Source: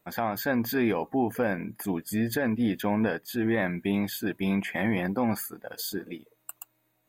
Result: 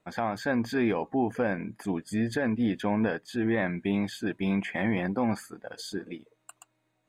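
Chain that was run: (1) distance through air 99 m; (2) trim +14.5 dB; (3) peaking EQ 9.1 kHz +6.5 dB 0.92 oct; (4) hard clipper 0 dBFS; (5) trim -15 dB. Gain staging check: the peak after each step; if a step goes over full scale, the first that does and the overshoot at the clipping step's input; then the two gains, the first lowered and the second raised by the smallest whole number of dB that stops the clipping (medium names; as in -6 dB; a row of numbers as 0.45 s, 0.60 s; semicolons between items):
-16.0 dBFS, -1.5 dBFS, -1.5 dBFS, -1.5 dBFS, -16.5 dBFS; nothing clips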